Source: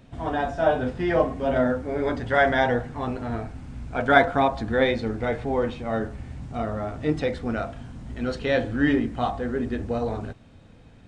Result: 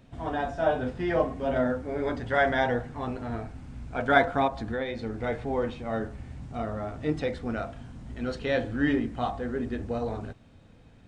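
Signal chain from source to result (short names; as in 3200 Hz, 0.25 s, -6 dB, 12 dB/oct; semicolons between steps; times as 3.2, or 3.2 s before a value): 4.47–5.24 compressor 6:1, threshold -24 dBFS, peak gain reduction 9 dB; gain -4 dB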